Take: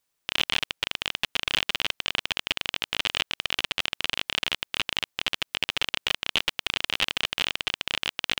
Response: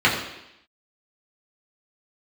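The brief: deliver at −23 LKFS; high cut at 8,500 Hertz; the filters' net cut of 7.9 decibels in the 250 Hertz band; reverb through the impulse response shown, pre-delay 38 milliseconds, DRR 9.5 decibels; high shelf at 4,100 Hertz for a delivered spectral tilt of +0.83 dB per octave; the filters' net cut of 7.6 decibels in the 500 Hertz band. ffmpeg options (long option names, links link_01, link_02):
-filter_complex "[0:a]lowpass=8500,equalizer=frequency=250:width_type=o:gain=-8.5,equalizer=frequency=500:width_type=o:gain=-8,highshelf=frequency=4100:gain=6,asplit=2[link_01][link_02];[1:a]atrim=start_sample=2205,adelay=38[link_03];[link_02][link_03]afir=irnorm=-1:irlink=0,volume=-30.5dB[link_04];[link_01][link_04]amix=inputs=2:normalize=0,volume=2dB"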